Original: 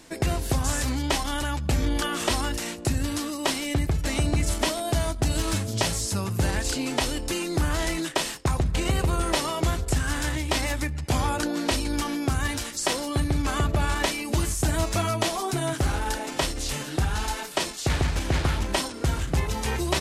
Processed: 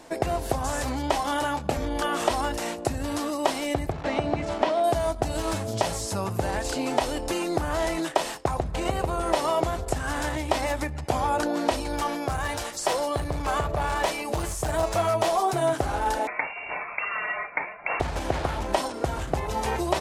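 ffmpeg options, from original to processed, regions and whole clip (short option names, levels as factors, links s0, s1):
-filter_complex "[0:a]asettb=1/sr,asplit=3[s0][s1][s2];[s0]atrim=end=1.214[s3];[s1]atrim=start=1.21:end=1.77,asetpts=PTS-STARTPTS,afade=t=in:d=0.004:c=qsin,afade=t=out:st=0.556:d=0.004:c=qsin,highpass=110,asplit=2[s4][s5];[s5]adelay=25,volume=0.376[s6];[s4][s6]amix=inputs=2:normalize=0,atrim=end_sample=24696[s7];[s2]atrim=start=1.766[s8];[s3][s7]acrossfade=d=0.004:c1=hsin:c2=qsin[s9];[s9][s8]acrossfade=d=0.004:c1=qsin:c2=hsin,asettb=1/sr,asplit=3[s10][s11][s12];[s10]atrim=end=3.924[s13];[s11]atrim=start=3.92:end=4.84,asetpts=PTS-STARTPTS,afade=t=in:d=0.004:c=qsin,afade=t=out:st=0.916:d=0.004:c=qsin,acrusher=bits=7:dc=4:mix=0:aa=0.000001,highpass=100,lowpass=3500[s14];[s12]atrim=start=4.836[s15];[s13][s14]acrossfade=d=0.004:c1=hsin:c2=qsin[s16];[s16][s15]acrossfade=d=0.004:c1=qsin:c2=hsin,asettb=1/sr,asplit=3[s17][s18][s19];[s17]atrim=end=11.834[s20];[s18]atrim=start=11.83:end=15.62,asetpts=PTS-STARTPTS,afade=t=in:d=0.004:c=qsin,afade=t=out:st=3.786:d=0.004:c=qsin,equalizer=f=260:t=o:w=0.26:g=-13,asoftclip=type=hard:threshold=0.0841[s21];[s19]atrim=start=15.616[s22];[s20][s21]acrossfade=d=0.004:c1=hsin:c2=qsin[s23];[s23][s22]acrossfade=d=0.004:c1=qsin:c2=hsin,asettb=1/sr,asplit=3[s24][s25][s26];[s24]atrim=end=16.274[s27];[s25]atrim=start=16.27:end=18,asetpts=PTS-STARTPTS,afade=t=in:d=0.004:c=qsin,afade=t=out:st=1.726:d=0.004:c=qsin,lowshelf=f=390:t=q:w=3:g=-8,lowpass=f=2400:t=q:w=0.5098,lowpass=f=2400:t=q:w=0.6013,lowpass=f=2400:t=q:w=0.9,lowpass=f=2400:t=q:w=2.563,afreqshift=-2800[s28];[s26]atrim=start=17.996[s29];[s27][s28]acrossfade=d=0.004:c1=hsin:c2=qsin[s30];[s30][s29]acrossfade=d=0.004:c1=qsin:c2=hsin,acompressor=threshold=0.0631:ratio=6,equalizer=f=710:w=0.77:g=12.5,volume=0.708"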